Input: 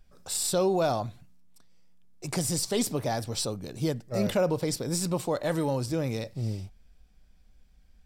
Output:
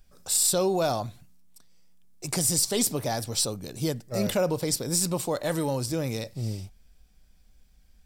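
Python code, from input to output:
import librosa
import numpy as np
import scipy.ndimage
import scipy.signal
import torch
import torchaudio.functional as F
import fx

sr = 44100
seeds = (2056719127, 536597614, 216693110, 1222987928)

y = fx.high_shelf(x, sr, hz=5000.0, db=9.5)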